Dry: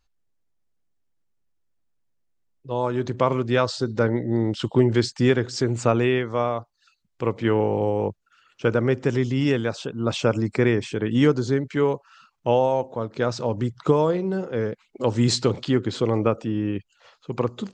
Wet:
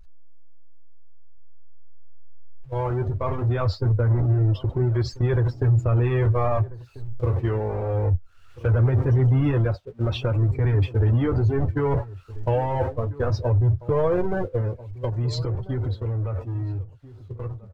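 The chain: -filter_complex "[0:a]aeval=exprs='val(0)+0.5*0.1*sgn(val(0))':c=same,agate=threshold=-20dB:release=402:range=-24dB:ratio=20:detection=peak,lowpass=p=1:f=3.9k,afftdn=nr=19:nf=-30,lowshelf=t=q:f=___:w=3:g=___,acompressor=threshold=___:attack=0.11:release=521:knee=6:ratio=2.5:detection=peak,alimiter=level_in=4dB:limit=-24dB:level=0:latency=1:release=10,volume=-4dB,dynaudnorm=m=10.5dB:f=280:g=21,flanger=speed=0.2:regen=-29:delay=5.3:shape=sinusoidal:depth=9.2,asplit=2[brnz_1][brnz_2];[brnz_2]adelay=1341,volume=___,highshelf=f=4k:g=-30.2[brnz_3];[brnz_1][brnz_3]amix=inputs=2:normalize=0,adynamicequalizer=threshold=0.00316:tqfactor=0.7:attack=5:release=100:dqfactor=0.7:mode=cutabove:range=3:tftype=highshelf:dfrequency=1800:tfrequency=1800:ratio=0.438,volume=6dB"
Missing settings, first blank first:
130, 13, -31dB, -18dB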